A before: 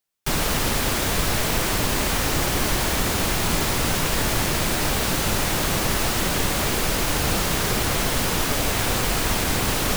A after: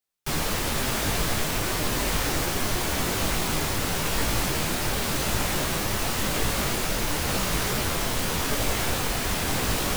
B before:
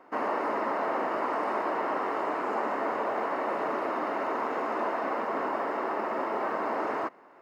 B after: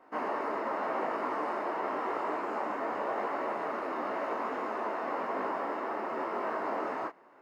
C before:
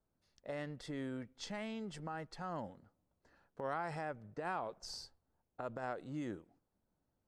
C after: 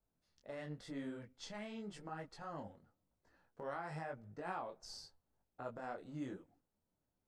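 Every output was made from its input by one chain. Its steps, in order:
detuned doubles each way 32 cents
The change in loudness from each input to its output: -4.0, -3.5, -3.5 LU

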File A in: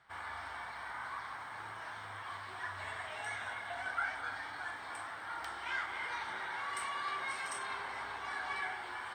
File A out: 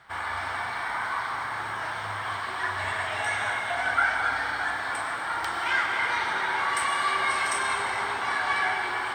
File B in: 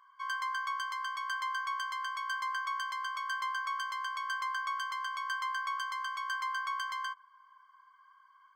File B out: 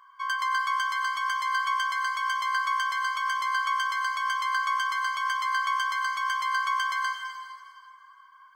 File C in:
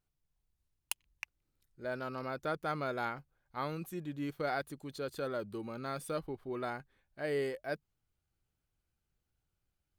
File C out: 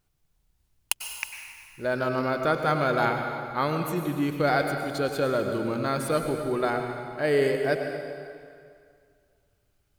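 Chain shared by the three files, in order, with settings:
plate-style reverb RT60 2.2 s, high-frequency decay 0.85×, pre-delay 85 ms, DRR 4.5 dB; match loudness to -27 LUFS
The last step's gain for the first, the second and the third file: +12.0, +7.0, +11.0 dB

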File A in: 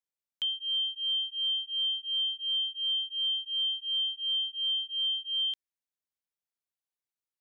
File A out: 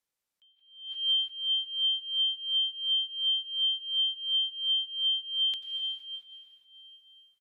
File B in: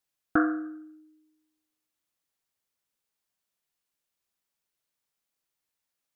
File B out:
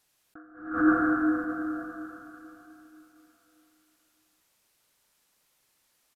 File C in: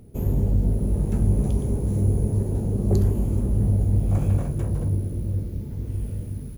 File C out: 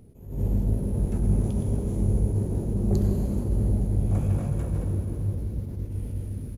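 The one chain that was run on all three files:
plate-style reverb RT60 3.5 s, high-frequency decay 0.8×, pre-delay 80 ms, DRR 3 dB; downsampling 32000 Hz; attack slew limiter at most 100 dB/s; match loudness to -27 LUFS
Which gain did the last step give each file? +7.0, +14.0, -3.5 dB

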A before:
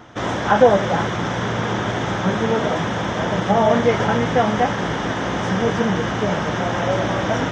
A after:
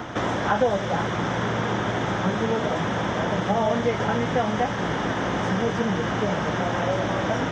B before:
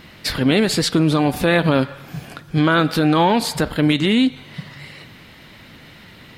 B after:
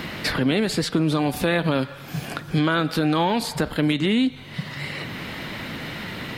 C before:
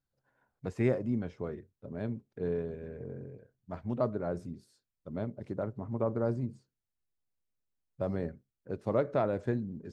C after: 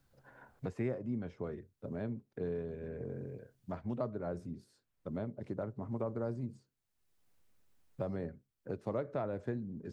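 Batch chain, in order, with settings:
three-band squash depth 70%; gain -5 dB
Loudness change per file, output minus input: -5.0, -6.0, -5.5 LU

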